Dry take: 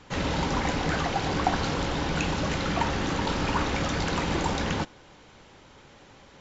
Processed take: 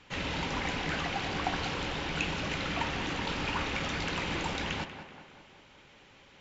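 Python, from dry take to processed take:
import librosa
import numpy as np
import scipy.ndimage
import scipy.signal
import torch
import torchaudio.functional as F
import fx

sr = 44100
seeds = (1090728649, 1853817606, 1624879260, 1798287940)

p1 = fx.peak_eq(x, sr, hz=2600.0, db=9.0, octaves=1.2)
p2 = p1 + fx.echo_tape(p1, sr, ms=190, feedback_pct=62, wet_db=-8.0, lp_hz=2500.0, drive_db=14.0, wow_cents=27, dry=0)
y = p2 * 10.0 ** (-8.5 / 20.0)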